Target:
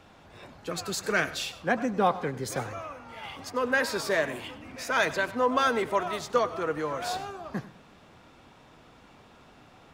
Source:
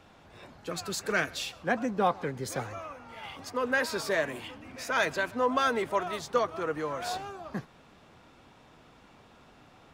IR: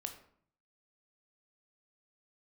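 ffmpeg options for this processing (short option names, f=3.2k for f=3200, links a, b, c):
-filter_complex "[0:a]asplit=2[a][b];[1:a]atrim=start_sample=2205,adelay=98[c];[b][c]afir=irnorm=-1:irlink=0,volume=-14dB[d];[a][d]amix=inputs=2:normalize=0,volume=2dB"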